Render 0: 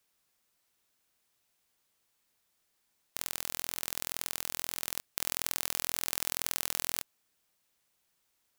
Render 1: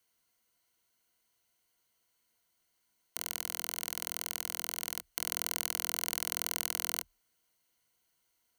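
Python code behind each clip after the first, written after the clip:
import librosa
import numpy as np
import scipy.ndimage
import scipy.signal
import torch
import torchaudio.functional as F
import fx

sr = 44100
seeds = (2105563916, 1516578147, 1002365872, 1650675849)

y = fx.ripple_eq(x, sr, per_octave=1.9, db=9)
y = F.gain(torch.from_numpy(y), -2.0).numpy()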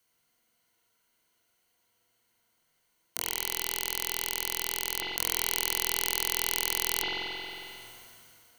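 y = fx.rev_spring(x, sr, rt60_s=1.5, pass_ms=(45,), chirp_ms=40, drr_db=-1.0)
y = fx.sustainer(y, sr, db_per_s=20.0)
y = F.gain(torch.from_numpy(y), 2.5).numpy()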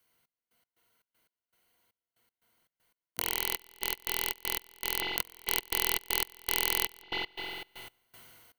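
y = fx.peak_eq(x, sr, hz=6500.0, db=-7.0, octaves=0.99)
y = fx.step_gate(y, sr, bpm=118, pattern='xx..x.xx.x..x', floor_db=-24.0, edge_ms=4.5)
y = F.gain(torch.from_numpy(y), 2.0).numpy()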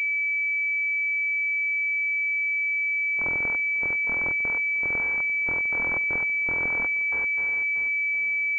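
y = scipy.signal.sosfilt(scipy.signal.butter(2, 900.0, 'highpass', fs=sr, output='sos'), x)
y = y + 0.31 * np.pad(y, (int(4.4 * sr / 1000.0), 0))[:len(y)]
y = fx.pwm(y, sr, carrier_hz=2300.0)
y = F.gain(torch.from_numpy(y), 1.0).numpy()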